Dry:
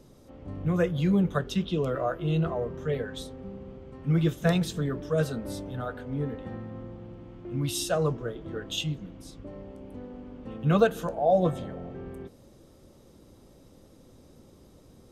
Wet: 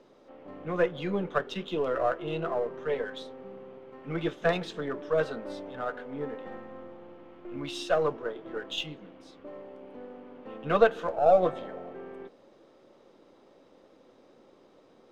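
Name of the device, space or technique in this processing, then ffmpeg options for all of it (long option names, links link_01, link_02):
crystal radio: -filter_complex "[0:a]highpass=400,lowpass=3000,aeval=exprs='if(lt(val(0),0),0.708*val(0),val(0))':channel_layout=same,asplit=3[link_01][link_02][link_03];[link_01]afade=type=out:start_time=6.44:duration=0.02[link_04];[link_02]asubboost=boost=2:cutoff=77,afade=type=in:start_time=6.44:duration=0.02,afade=type=out:start_time=7.54:duration=0.02[link_05];[link_03]afade=type=in:start_time=7.54:duration=0.02[link_06];[link_04][link_05][link_06]amix=inputs=3:normalize=0,volume=4dB"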